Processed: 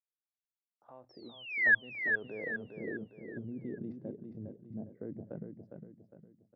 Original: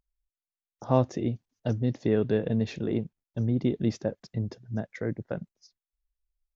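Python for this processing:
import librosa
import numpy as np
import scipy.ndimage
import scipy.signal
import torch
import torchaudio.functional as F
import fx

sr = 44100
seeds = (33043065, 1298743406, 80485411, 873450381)

y = fx.spec_paint(x, sr, seeds[0], shape='fall', start_s=1.09, length_s=0.66, low_hz=1600.0, high_hz=5600.0, level_db=-14.0)
y = fx.level_steps(y, sr, step_db=19)
y = fx.filter_lfo_lowpass(y, sr, shape='sine', hz=0.6, low_hz=540.0, high_hz=4200.0, q=0.82)
y = fx.hum_notches(y, sr, base_hz=60, count=3)
y = fx.filter_sweep_bandpass(y, sr, from_hz=3400.0, to_hz=270.0, start_s=0.62, end_s=3.3, q=0.94)
y = fx.echo_feedback(y, sr, ms=407, feedback_pct=41, wet_db=-6.0)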